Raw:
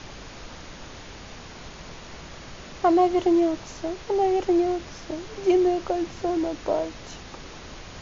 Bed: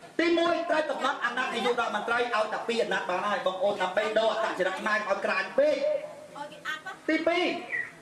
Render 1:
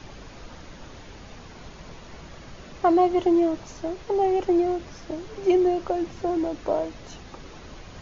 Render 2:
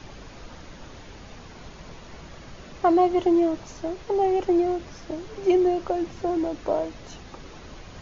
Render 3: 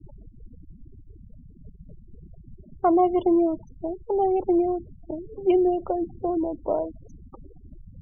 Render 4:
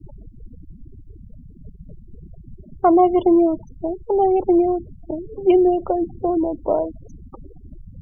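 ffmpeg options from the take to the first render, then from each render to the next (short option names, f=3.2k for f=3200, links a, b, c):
-af "afftdn=nr=6:nf=-42"
-af anull
-af "afftfilt=real='re*gte(hypot(re,im),0.0316)':imag='im*gte(hypot(re,im),0.0316)':win_size=1024:overlap=0.75,equalizer=f=1.8k:w=2.6:g=-11.5"
-af "volume=5.5dB"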